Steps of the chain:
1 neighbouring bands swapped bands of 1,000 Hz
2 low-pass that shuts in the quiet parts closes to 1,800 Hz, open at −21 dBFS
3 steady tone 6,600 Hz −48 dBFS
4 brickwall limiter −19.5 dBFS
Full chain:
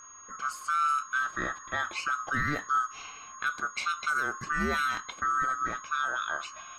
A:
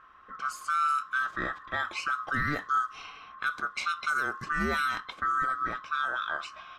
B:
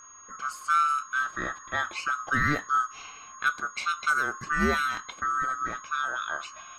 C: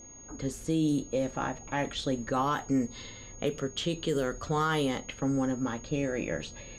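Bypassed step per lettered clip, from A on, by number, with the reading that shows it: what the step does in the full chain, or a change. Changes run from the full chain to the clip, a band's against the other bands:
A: 3, 8 kHz band −8.0 dB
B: 4, change in crest factor +4.5 dB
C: 1, 2 kHz band −16.5 dB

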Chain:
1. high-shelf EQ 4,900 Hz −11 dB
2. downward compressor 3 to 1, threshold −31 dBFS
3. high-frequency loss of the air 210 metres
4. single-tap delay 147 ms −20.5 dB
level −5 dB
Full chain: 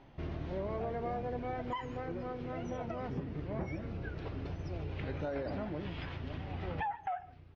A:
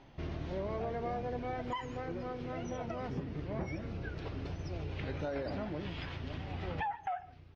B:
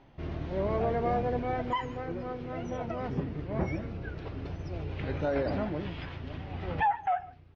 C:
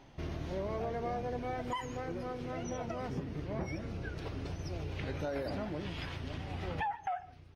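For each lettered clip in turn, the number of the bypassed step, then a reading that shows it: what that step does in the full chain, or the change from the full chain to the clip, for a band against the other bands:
1, 4 kHz band +3.0 dB
2, average gain reduction 4.5 dB
3, 4 kHz band +4.5 dB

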